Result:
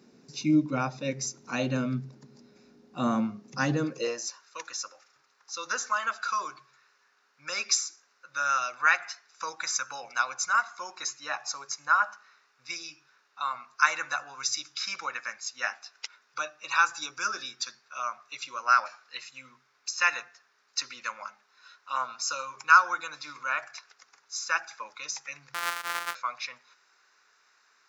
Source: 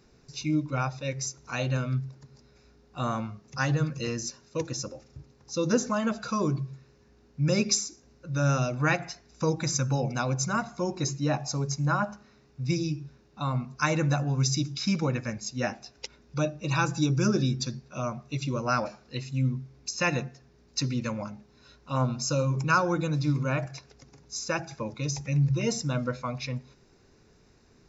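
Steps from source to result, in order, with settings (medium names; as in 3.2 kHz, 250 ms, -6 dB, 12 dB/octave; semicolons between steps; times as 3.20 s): 25.54–26.15 s: sorted samples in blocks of 256 samples; high-pass sweep 220 Hz -> 1.3 kHz, 3.71–4.45 s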